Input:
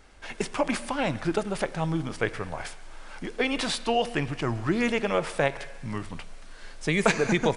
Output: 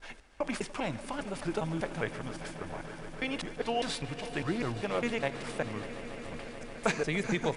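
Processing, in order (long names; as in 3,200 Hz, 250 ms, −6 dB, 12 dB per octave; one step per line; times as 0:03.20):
slices reordered back to front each 201 ms, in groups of 2
echo that builds up and dies away 145 ms, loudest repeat 5, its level −17 dB
level −7 dB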